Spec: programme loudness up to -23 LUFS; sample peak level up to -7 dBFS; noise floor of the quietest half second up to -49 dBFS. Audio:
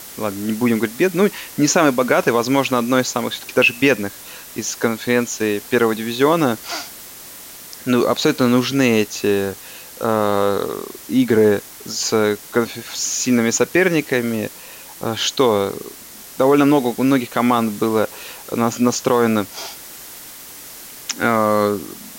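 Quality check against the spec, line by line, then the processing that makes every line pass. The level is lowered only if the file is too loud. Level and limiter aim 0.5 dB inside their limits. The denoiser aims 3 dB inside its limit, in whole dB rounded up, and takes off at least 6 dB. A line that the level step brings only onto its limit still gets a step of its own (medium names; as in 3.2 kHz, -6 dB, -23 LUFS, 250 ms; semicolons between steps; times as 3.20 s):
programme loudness -18.0 LUFS: fail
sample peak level -3.5 dBFS: fail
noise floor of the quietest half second -38 dBFS: fail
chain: noise reduction 9 dB, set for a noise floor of -38 dBFS; trim -5.5 dB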